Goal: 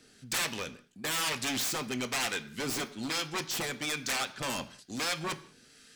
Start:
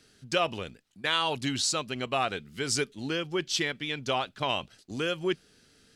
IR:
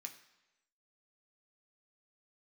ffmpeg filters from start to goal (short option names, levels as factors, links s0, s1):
-filter_complex "[0:a]aeval=exprs='0.0335*(abs(mod(val(0)/0.0335+3,4)-2)-1)':c=same,acrossover=split=940[s0][s1];[s0]aeval=exprs='val(0)*(1-0.5/2+0.5/2*cos(2*PI*1.1*n/s))':c=same[s2];[s1]aeval=exprs='val(0)*(1-0.5/2-0.5/2*cos(2*PI*1.1*n/s))':c=same[s3];[s2][s3]amix=inputs=2:normalize=0,asplit=2[s4][s5];[1:a]atrim=start_sample=2205,afade=t=out:st=0.26:d=0.01,atrim=end_sample=11907[s6];[s5][s6]afir=irnorm=-1:irlink=0,volume=2[s7];[s4][s7]amix=inputs=2:normalize=0"